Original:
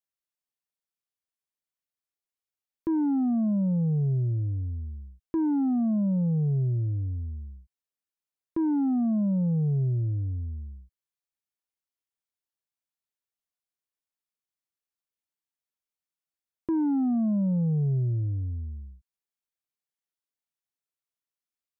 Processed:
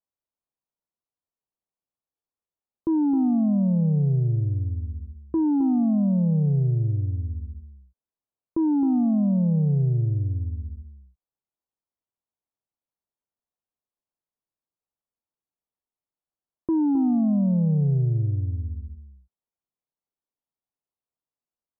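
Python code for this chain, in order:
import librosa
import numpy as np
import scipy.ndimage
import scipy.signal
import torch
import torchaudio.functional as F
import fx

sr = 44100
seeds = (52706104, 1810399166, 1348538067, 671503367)

p1 = scipy.signal.sosfilt(scipy.signal.butter(4, 1100.0, 'lowpass', fs=sr, output='sos'), x)
p2 = p1 + fx.echo_single(p1, sr, ms=264, db=-10.0, dry=0)
y = p2 * 10.0 ** (3.5 / 20.0)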